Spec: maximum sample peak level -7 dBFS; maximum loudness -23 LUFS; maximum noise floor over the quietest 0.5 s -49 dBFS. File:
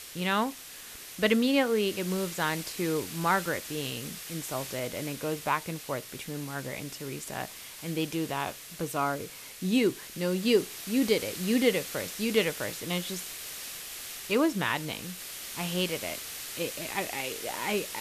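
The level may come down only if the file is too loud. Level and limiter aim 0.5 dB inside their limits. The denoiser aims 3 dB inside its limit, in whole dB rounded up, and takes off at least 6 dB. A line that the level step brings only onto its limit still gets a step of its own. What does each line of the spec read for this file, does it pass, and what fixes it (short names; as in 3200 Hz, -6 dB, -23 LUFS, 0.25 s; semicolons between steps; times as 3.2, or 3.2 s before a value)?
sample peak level -11.0 dBFS: OK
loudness -30.5 LUFS: OK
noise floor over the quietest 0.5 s -45 dBFS: fail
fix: denoiser 7 dB, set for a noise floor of -45 dBFS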